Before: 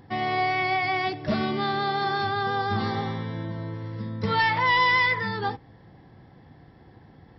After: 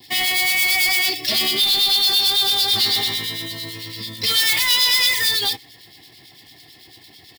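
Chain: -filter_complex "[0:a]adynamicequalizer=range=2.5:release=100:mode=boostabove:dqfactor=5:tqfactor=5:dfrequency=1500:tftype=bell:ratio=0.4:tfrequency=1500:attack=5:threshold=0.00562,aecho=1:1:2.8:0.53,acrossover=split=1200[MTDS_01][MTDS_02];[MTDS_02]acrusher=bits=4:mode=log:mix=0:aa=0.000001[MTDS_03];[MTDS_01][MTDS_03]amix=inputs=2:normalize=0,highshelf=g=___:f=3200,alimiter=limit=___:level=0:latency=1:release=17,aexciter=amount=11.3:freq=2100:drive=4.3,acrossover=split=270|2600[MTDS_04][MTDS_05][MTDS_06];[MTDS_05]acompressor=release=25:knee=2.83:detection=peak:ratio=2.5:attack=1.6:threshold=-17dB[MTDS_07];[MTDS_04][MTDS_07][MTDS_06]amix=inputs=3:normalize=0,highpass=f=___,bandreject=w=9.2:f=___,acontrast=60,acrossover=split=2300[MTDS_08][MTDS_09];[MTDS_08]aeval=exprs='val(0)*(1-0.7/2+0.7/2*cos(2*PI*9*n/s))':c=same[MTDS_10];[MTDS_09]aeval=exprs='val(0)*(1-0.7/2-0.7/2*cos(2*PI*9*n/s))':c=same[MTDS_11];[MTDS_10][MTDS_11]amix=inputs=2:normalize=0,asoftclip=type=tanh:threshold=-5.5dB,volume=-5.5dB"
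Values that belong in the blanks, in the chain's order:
9.5, -14dB, 110, 1500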